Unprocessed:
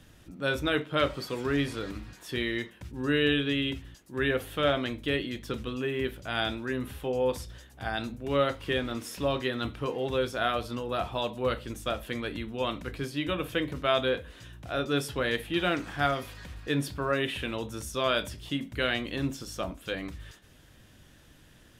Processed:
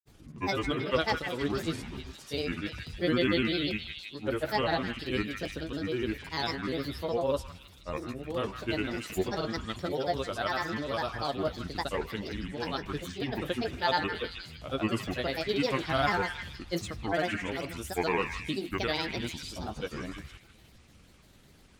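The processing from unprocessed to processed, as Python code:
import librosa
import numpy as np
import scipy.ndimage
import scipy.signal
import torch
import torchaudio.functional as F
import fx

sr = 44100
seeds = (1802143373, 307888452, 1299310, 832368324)

y = fx.peak_eq(x, sr, hz=1900.0, db=-6.0, octaves=0.71)
y = fx.granulator(y, sr, seeds[0], grain_ms=100.0, per_s=20.0, spray_ms=100.0, spread_st=7)
y = fx.echo_stepped(y, sr, ms=157, hz=1700.0, octaves=0.7, feedback_pct=70, wet_db=-3.5)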